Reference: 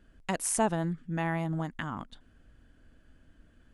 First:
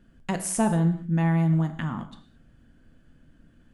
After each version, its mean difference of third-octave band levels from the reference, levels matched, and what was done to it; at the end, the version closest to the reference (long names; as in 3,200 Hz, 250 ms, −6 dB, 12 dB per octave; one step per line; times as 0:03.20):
4.5 dB: parametric band 170 Hz +8 dB 1.4 octaves
reverb whose tail is shaped and stops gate 240 ms falling, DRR 7 dB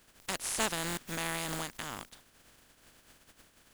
14.0 dB: compressing power law on the bin magnitudes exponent 0.31
buffer that repeats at 0:00.88, samples 1,024, times 3
level −4.5 dB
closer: first